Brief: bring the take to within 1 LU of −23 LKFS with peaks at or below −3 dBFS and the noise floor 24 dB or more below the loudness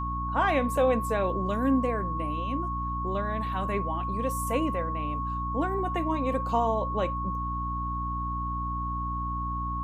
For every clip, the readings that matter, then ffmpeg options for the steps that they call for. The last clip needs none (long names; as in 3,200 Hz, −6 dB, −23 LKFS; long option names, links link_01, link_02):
mains hum 60 Hz; hum harmonics up to 300 Hz; level of the hum −31 dBFS; interfering tone 1,100 Hz; level of the tone −31 dBFS; integrated loudness −29.0 LKFS; sample peak −12.5 dBFS; target loudness −23.0 LKFS
→ -af "bandreject=frequency=60:width_type=h:width=4,bandreject=frequency=120:width_type=h:width=4,bandreject=frequency=180:width_type=h:width=4,bandreject=frequency=240:width_type=h:width=4,bandreject=frequency=300:width_type=h:width=4"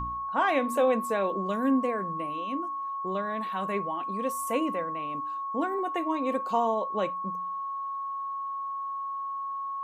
mains hum none found; interfering tone 1,100 Hz; level of the tone −31 dBFS
→ -af "bandreject=frequency=1100:width=30"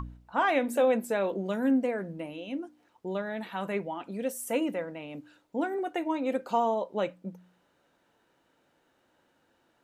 interfering tone none found; integrated loudness −30.5 LKFS; sample peak −13.5 dBFS; target loudness −23.0 LKFS
→ -af "volume=7.5dB"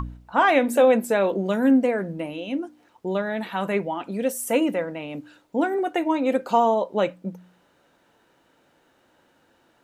integrated loudness −23.0 LKFS; sample peak −6.0 dBFS; background noise floor −63 dBFS